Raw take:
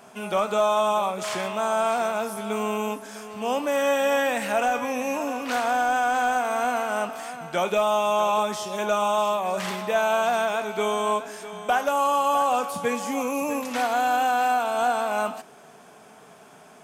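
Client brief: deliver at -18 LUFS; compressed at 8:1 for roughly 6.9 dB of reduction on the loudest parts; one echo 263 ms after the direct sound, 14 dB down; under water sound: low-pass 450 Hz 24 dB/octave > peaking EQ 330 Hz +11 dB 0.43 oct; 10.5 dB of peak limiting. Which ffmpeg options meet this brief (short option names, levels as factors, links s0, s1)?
-af "acompressor=threshold=0.0562:ratio=8,alimiter=level_in=1.06:limit=0.0631:level=0:latency=1,volume=0.944,lowpass=f=450:w=0.5412,lowpass=f=450:w=1.3066,equalizer=f=330:t=o:w=0.43:g=11,aecho=1:1:263:0.2,volume=11.2"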